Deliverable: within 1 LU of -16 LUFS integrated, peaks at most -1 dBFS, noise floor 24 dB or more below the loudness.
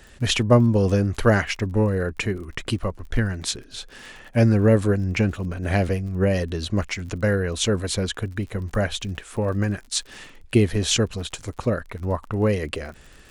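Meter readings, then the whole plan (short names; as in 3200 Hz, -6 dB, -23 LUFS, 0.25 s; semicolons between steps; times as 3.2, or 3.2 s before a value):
ticks 44/s; loudness -23.0 LUFS; peak -3.5 dBFS; loudness target -16.0 LUFS
-> de-click; gain +7 dB; limiter -1 dBFS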